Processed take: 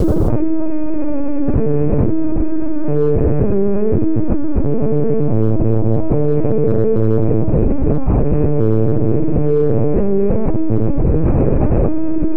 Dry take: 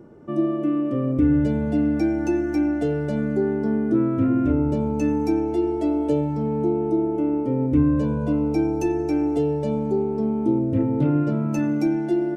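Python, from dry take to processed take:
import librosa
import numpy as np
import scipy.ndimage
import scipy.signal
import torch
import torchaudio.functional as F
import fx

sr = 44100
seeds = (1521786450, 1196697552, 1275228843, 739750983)

p1 = fx.rattle_buzz(x, sr, strikes_db=-28.0, level_db=-18.0)
p2 = scipy.signal.sosfilt(scipy.signal.butter(2, 330.0, 'highpass', fs=sr, output='sos'), p1)
p3 = fx.room_shoebox(p2, sr, seeds[0], volume_m3=150.0, walls='hard', distance_m=2.1)
p4 = fx.rider(p3, sr, range_db=10, speed_s=2.0)
p5 = fx.lpc_vocoder(p4, sr, seeds[1], excitation='pitch_kept', order=8)
p6 = scipy.signal.sosfilt(scipy.signal.butter(4, 1300.0, 'lowpass', fs=sr, output='sos'), p5)
p7 = p6 + fx.echo_single(p6, sr, ms=259, db=-14.5, dry=0)
p8 = fx.quant_dither(p7, sr, seeds[2], bits=10, dither='none')
p9 = fx.low_shelf(p8, sr, hz=490.0, db=10.5)
p10 = fx.env_flatten(p9, sr, amount_pct=100)
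y = F.gain(torch.from_numpy(p10), -15.5).numpy()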